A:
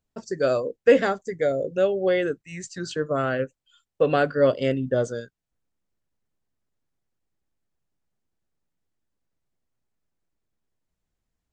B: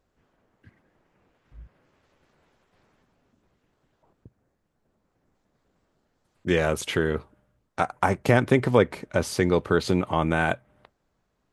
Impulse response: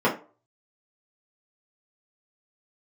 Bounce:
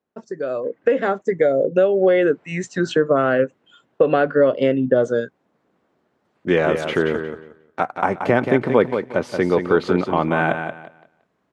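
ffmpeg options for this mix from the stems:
-filter_complex "[0:a]highshelf=frequency=3700:gain=-10.5,bandreject=frequency=4700:width=8.6,acompressor=threshold=-27dB:ratio=5,volume=2dB[link_01];[1:a]highshelf=frequency=4600:gain=-12,volume=-6.5dB,asplit=3[link_02][link_03][link_04];[link_02]atrim=end=1.22,asetpts=PTS-STARTPTS,afade=type=out:start_time=1.216:duration=0.004:curve=hsin[link_05];[link_03]atrim=start=1.22:end=1.88,asetpts=PTS-STARTPTS,volume=0[link_06];[link_04]atrim=start=1.88,asetpts=PTS-STARTPTS,afade=type=in:duration=0.004:curve=hsin[link_07];[link_05][link_06][link_07]concat=n=3:v=0:a=1,asplit=2[link_08][link_09];[link_09]volume=-7.5dB,aecho=0:1:179|358|537|716:1|0.23|0.0529|0.0122[link_10];[link_01][link_08][link_10]amix=inputs=3:normalize=0,highpass=190,highshelf=frequency=6200:gain=-10.5,dynaudnorm=framelen=210:gausssize=7:maxgain=13dB"

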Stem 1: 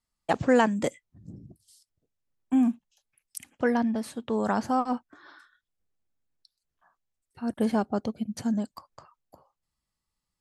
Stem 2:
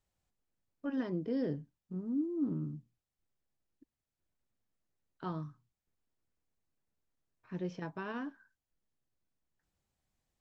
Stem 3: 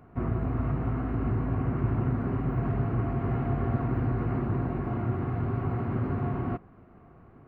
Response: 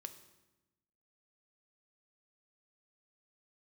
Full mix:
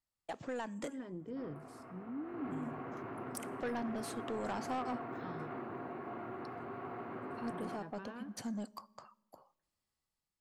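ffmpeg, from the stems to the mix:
-filter_complex "[0:a]acompressor=threshold=-28dB:ratio=3,highpass=frequency=310:poles=1,volume=-10.5dB,asplit=2[link_01][link_02];[link_02]volume=-8.5dB[link_03];[1:a]lowpass=3900,volume=-16dB,asplit=3[link_04][link_05][link_06];[link_05]volume=-9.5dB[link_07];[2:a]highpass=400,adelay=1200,volume=-12dB,afade=type=in:start_time=2.21:duration=0.24:silence=0.398107[link_08];[link_06]apad=whole_len=458829[link_09];[link_01][link_09]sidechaincompress=threshold=-58dB:ratio=8:attack=37:release=550[link_10];[3:a]atrim=start_sample=2205[link_11];[link_03][link_07]amix=inputs=2:normalize=0[link_12];[link_12][link_11]afir=irnorm=-1:irlink=0[link_13];[link_10][link_04][link_08][link_13]amix=inputs=4:normalize=0,dynaudnorm=framelen=310:gausssize=5:maxgain=6.5dB,asoftclip=type=tanh:threshold=-32dB"

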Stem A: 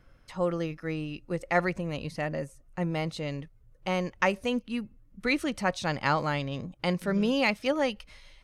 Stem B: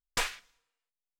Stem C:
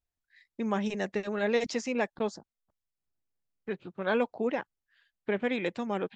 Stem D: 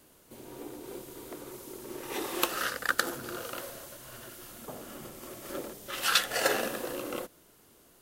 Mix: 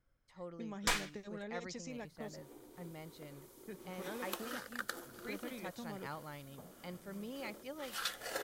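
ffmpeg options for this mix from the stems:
ffmpeg -i stem1.wav -i stem2.wav -i stem3.wav -i stem4.wav -filter_complex "[0:a]volume=-19.5dB[link_01];[1:a]adelay=700,volume=-2dB[link_02];[2:a]bass=frequency=250:gain=7,treble=frequency=4000:gain=10,acompressor=threshold=-28dB:ratio=6,volume=-14.5dB[link_03];[3:a]adelay=1900,volume=-13.5dB[link_04];[link_01][link_02][link_03][link_04]amix=inputs=4:normalize=0,bandreject=frequency=2700:width=12" out.wav

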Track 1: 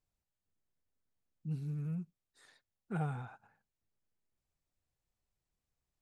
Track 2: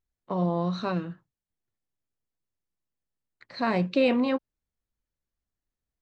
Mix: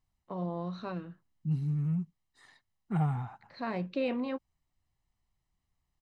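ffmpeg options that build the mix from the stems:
ffmpeg -i stem1.wav -i stem2.wav -filter_complex "[0:a]aecho=1:1:1:0.59,acontrast=81,volume=-2.5dB[link_01];[1:a]volume=-9dB[link_02];[link_01][link_02]amix=inputs=2:normalize=0,lowpass=frequency=4000:poles=1" out.wav

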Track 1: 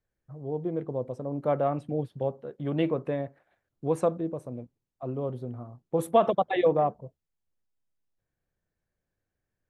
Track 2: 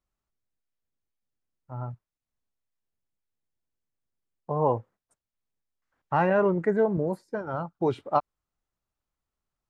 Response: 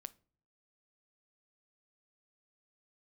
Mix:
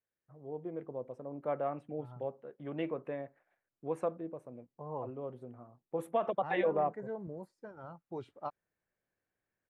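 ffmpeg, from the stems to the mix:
-filter_complex "[0:a]highpass=frequency=300:poles=1,highshelf=frequency=3100:width_type=q:width=1.5:gain=-7,volume=-0.5dB,afade=type=in:start_time=6.17:duration=0.58:silence=0.446684[link_01];[1:a]adelay=300,volume=-16.5dB[link_02];[link_01][link_02]amix=inputs=2:normalize=0,alimiter=limit=-21.5dB:level=0:latency=1:release=329"

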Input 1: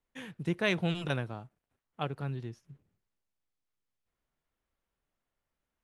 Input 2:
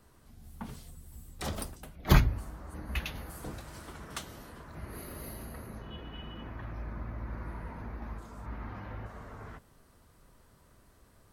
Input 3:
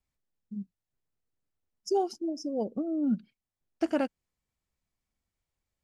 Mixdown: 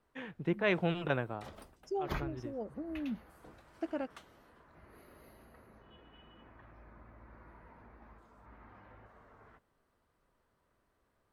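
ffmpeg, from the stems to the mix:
ffmpeg -i stem1.wav -i stem2.wav -i stem3.wav -filter_complex "[0:a]aemphasis=mode=reproduction:type=75fm,volume=2.5dB[link_01];[1:a]volume=-11dB[link_02];[2:a]lowshelf=frequency=130:gain=10,volume=-9dB,asplit=2[link_03][link_04];[link_04]apad=whole_len=257351[link_05];[link_01][link_05]sidechaincompress=threshold=-45dB:ratio=8:attack=49:release=174[link_06];[link_06][link_02][link_03]amix=inputs=3:normalize=0,bass=frequency=250:gain=-8,treble=frequency=4000:gain=-11" out.wav

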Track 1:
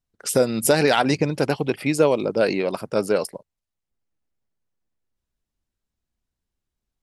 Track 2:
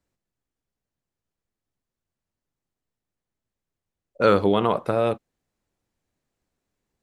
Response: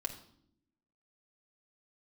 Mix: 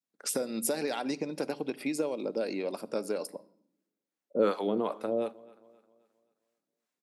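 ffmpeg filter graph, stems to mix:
-filter_complex "[0:a]bandreject=frequency=3000:width=14,acompressor=threshold=-22dB:ratio=6,volume=-8dB,asplit=2[link_01][link_02];[link_02]volume=-8dB[link_03];[1:a]acrossover=split=590[link_04][link_05];[link_04]aeval=exprs='val(0)*(1-1/2+1/2*cos(2*PI*2.6*n/s))':channel_layout=same[link_06];[link_05]aeval=exprs='val(0)*(1-1/2-1/2*cos(2*PI*2.6*n/s))':channel_layout=same[link_07];[link_06][link_07]amix=inputs=2:normalize=0,adelay=150,volume=-3.5dB,asplit=3[link_08][link_09][link_10];[link_09]volume=-18dB[link_11];[link_10]volume=-22.5dB[link_12];[2:a]atrim=start_sample=2205[link_13];[link_03][link_11]amix=inputs=2:normalize=0[link_14];[link_14][link_13]afir=irnorm=-1:irlink=0[link_15];[link_12]aecho=0:1:264|528|792|1056|1320|1584:1|0.42|0.176|0.0741|0.0311|0.0131[link_16];[link_01][link_08][link_15][link_16]amix=inputs=4:normalize=0,adynamicequalizer=threshold=0.00447:dfrequency=1500:dqfactor=0.89:tfrequency=1500:tqfactor=0.89:attack=5:release=100:ratio=0.375:range=3:mode=cutabove:tftype=bell,highpass=frequency=200:width=0.5412,highpass=frequency=200:width=1.3066"

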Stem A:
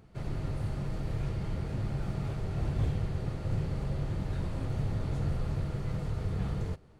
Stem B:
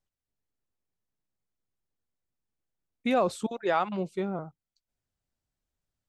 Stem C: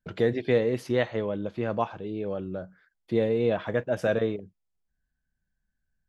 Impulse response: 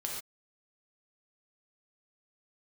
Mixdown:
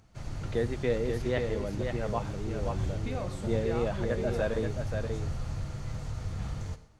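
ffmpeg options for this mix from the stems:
-filter_complex "[0:a]equalizer=frequency=160:width_type=o:width=0.67:gain=-6,equalizer=frequency=400:width_type=o:width=0.67:gain=-9,equalizer=frequency=6300:width_type=o:width=0.67:gain=10,volume=-3.5dB,asplit=2[link_01][link_02];[link_02]volume=-9dB[link_03];[1:a]acompressor=threshold=-30dB:ratio=6,volume=-9dB,asplit=2[link_04][link_05];[link_05]volume=-4.5dB[link_06];[2:a]adelay=350,volume=-6dB,asplit=2[link_07][link_08];[link_08]volume=-5dB[link_09];[3:a]atrim=start_sample=2205[link_10];[link_03][link_06]amix=inputs=2:normalize=0[link_11];[link_11][link_10]afir=irnorm=-1:irlink=0[link_12];[link_09]aecho=0:1:531:1[link_13];[link_01][link_04][link_07][link_12][link_13]amix=inputs=5:normalize=0"

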